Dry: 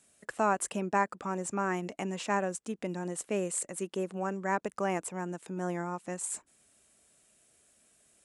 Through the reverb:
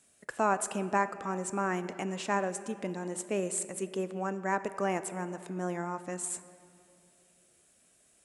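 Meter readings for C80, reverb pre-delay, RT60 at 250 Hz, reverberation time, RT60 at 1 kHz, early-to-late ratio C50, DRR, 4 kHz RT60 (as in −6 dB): 13.5 dB, 3 ms, 3.0 s, 2.6 s, 2.4 s, 13.0 dB, 11.5 dB, 1.6 s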